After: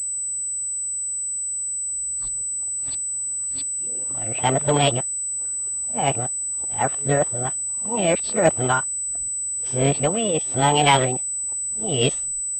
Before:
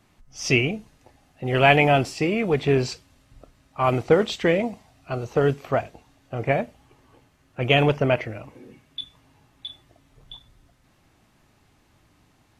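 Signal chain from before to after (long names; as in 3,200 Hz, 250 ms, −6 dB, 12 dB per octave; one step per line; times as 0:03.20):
played backwards from end to start
formants moved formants +4 semitones
switching amplifier with a slow clock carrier 8,000 Hz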